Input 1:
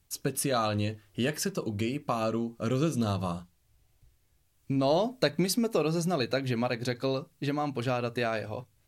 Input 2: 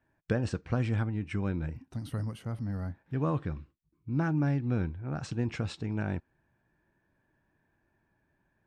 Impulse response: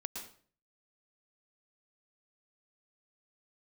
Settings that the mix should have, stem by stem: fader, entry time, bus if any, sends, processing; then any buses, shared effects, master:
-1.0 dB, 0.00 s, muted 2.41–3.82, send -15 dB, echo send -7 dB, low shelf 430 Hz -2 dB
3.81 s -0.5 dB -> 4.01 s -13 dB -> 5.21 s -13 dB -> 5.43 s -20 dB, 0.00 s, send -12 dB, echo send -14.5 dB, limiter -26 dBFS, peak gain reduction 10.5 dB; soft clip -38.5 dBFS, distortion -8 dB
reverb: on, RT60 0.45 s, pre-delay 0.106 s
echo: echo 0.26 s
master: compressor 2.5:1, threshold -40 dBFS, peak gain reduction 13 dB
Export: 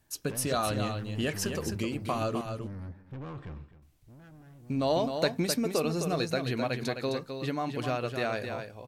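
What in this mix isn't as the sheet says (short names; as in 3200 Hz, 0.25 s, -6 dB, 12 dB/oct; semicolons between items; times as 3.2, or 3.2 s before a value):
stem 1: send off; master: missing compressor 2.5:1, threshold -40 dBFS, peak gain reduction 13 dB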